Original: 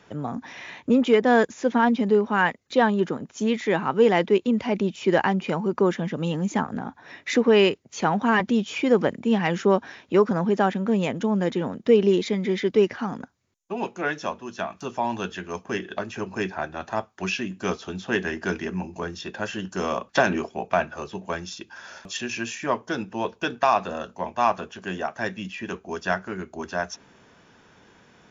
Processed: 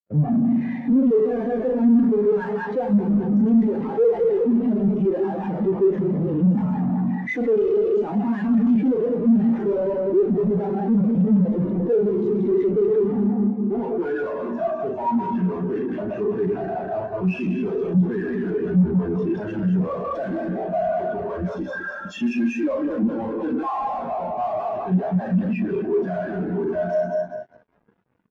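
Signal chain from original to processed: backward echo that repeats 101 ms, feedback 63%, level -3 dB; treble shelf 2.1 kHz -8 dB; early reflections 39 ms -7 dB, 55 ms -16.5 dB, 74 ms -16.5 dB; valve stage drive 16 dB, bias 0.7; 21.57–24.00 s: comb 3.7 ms, depth 44%; fuzz box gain 53 dB, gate -53 dBFS; spectral contrast expander 2.5:1

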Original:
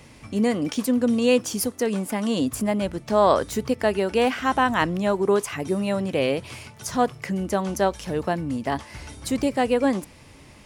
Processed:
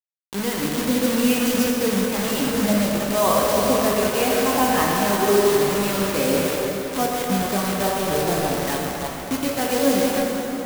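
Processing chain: coarse spectral quantiser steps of 15 dB; on a send: repeats whose band climbs or falls 163 ms, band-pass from 410 Hz, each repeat 0.7 oct, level -4 dB; on the sum: harmonic tremolo 1.1 Hz, depth 50%, crossover 950 Hz; distance through air 160 m; bit crusher 5-bit; treble shelf 7.4 kHz +9 dB; plate-style reverb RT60 4.3 s, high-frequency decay 0.65×, DRR -2 dB

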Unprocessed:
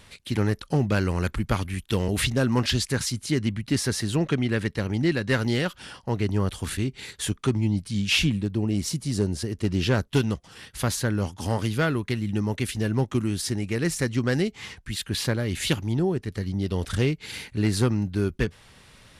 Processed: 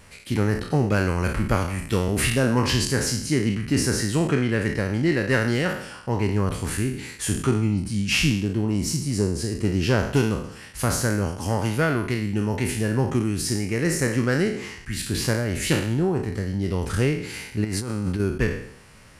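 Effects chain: spectral sustain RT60 0.66 s; peaking EQ 3.6 kHz -11 dB 0.4 oct; 17.64–18.20 s: compressor with a negative ratio -28 dBFS, ratio -1; trim +1 dB

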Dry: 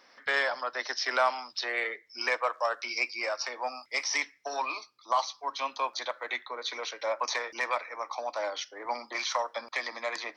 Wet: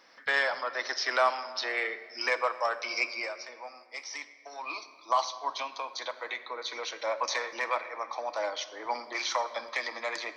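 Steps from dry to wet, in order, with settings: 3.18–4.77 s: dip -10 dB, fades 0.16 s; 5.61–6.87 s: compression, threshold -32 dBFS, peak gain reduction 7.5 dB; 7.56–8.27 s: treble shelf 6.2 kHz -7.5 dB; simulated room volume 3700 m³, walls mixed, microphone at 0.67 m

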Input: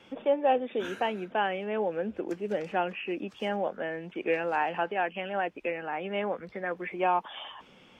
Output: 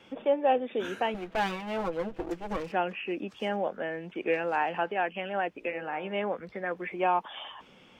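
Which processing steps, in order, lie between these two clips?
1.14–2.72 s: comb filter that takes the minimum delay 6.1 ms; 5.57–6.20 s: de-hum 56.58 Hz, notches 29

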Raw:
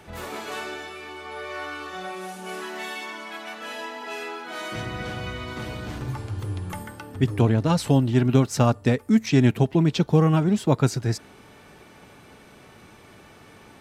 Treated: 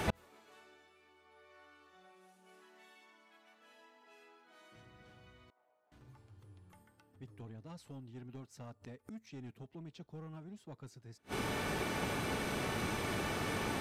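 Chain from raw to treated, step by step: saturation -13 dBFS, distortion -14 dB; inverted gate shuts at -32 dBFS, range -40 dB; 5.50–5.92 s: ladder band-pass 800 Hz, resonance 55%; trim +12 dB

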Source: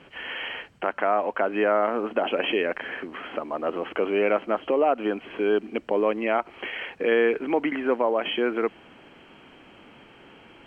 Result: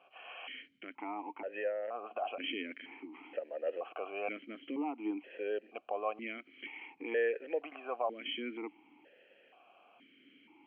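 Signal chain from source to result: 1.21–2.40 s: compression, threshold -23 dBFS, peak gain reduction 6.5 dB; bass shelf 360 Hz -6.5 dB; stepped vowel filter 2.1 Hz

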